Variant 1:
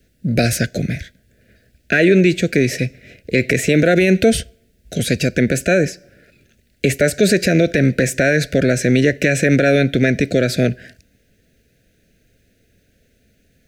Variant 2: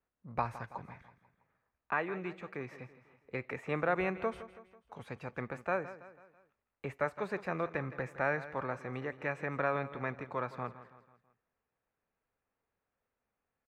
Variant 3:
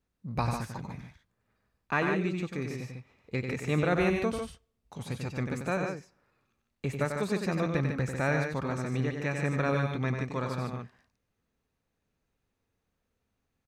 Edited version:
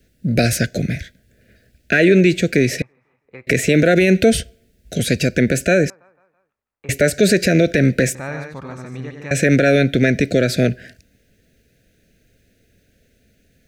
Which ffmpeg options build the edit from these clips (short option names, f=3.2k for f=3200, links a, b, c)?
-filter_complex "[1:a]asplit=2[a][b];[0:a]asplit=4[c][d][e][f];[c]atrim=end=2.822[g];[a]atrim=start=2.818:end=3.472[h];[d]atrim=start=3.468:end=5.902[i];[b]atrim=start=5.898:end=6.892[j];[e]atrim=start=6.888:end=8.152[k];[2:a]atrim=start=8.148:end=9.312[l];[f]atrim=start=9.308[m];[g][h]acrossfade=d=0.004:c1=hsin:c2=hsin[n];[n][i]acrossfade=d=0.004:c1=hsin:c2=hsin[o];[o][j]acrossfade=d=0.004:c1=hsin:c2=hsin[p];[p][k]acrossfade=d=0.004:c1=hsin:c2=hsin[q];[q][l]acrossfade=d=0.004:c1=hsin:c2=hsin[r];[r][m]acrossfade=d=0.004:c1=hsin:c2=hsin"